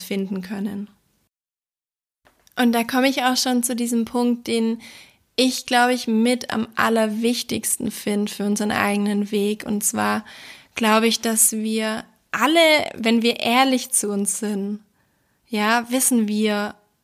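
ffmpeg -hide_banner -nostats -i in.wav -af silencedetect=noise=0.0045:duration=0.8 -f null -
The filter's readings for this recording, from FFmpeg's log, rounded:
silence_start: 0.93
silence_end: 2.25 | silence_duration: 1.33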